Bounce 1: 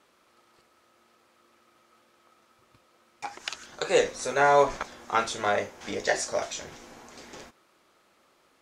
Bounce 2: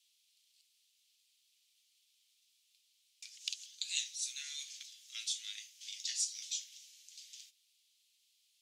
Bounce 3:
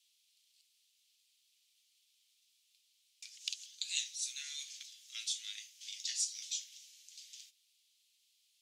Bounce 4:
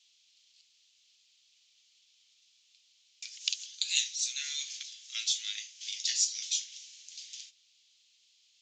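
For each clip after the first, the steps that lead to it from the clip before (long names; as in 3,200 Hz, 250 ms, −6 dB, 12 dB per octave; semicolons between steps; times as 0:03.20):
Butterworth high-pass 3,000 Hz 36 dB per octave; level −1.5 dB
no processing that can be heard
downsampling to 16,000 Hz; level +8 dB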